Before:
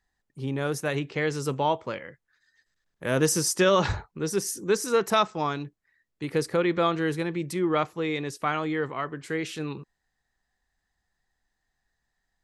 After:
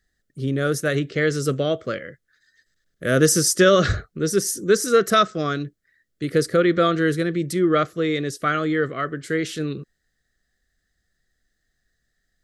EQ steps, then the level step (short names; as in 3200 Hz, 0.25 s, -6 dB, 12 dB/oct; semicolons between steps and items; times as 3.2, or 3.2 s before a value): dynamic EQ 1200 Hz, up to +4 dB, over -38 dBFS, Q 1.5; Butterworth band-stop 910 Hz, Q 1.4; bell 2500 Hz -8.5 dB 0.34 oct; +6.5 dB